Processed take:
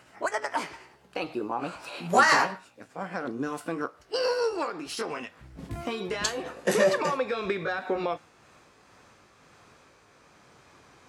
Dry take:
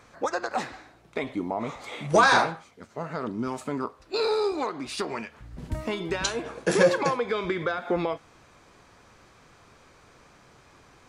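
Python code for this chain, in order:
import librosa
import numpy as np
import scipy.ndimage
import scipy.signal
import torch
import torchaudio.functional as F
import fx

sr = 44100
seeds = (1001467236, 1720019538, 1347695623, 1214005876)

y = fx.pitch_glide(x, sr, semitones=3.5, runs='ending unshifted')
y = fx.highpass(y, sr, hz=99.0, slope=6)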